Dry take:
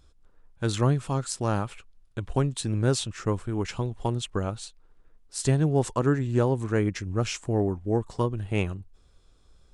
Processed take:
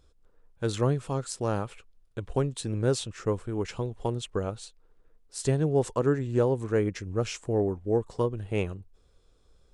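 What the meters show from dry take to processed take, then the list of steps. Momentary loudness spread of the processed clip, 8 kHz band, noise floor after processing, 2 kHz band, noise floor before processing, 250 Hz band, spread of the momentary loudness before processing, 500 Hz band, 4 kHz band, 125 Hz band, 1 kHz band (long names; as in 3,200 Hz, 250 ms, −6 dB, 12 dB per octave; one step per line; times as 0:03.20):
10 LU, −4.0 dB, −63 dBFS, −4.0 dB, −59 dBFS, −3.0 dB, 9 LU, +1.0 dB, −4.0 dB, −4.0 dB, −3.5 dB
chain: parametric band 470 Hz +7 dB 0.63 octaves
level −4 dB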